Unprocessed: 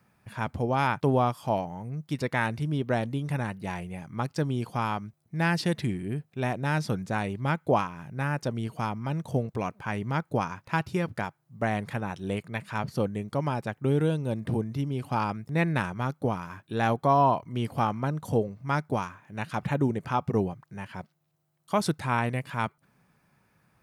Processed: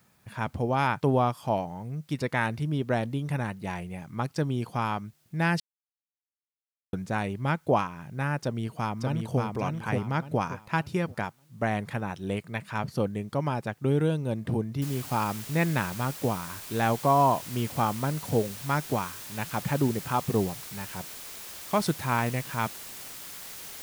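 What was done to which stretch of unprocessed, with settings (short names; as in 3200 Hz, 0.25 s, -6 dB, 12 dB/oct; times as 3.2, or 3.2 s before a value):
5.6–6.93 mute
8.39–9.4 echo throw 0.58 s, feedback 30%, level -3 dB
14.82 noise floor step -69 dB -42 dB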